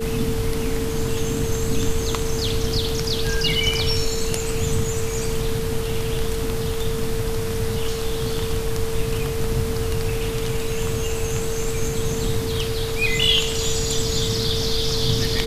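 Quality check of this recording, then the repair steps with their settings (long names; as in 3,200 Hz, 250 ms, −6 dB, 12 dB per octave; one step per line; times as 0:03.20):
whistle 450 Hz −26 dBFS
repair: notch filter 450 Hz, Q 30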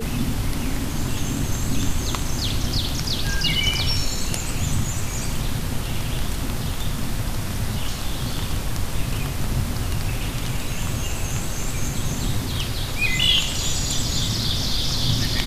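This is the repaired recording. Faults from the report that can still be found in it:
none of them is left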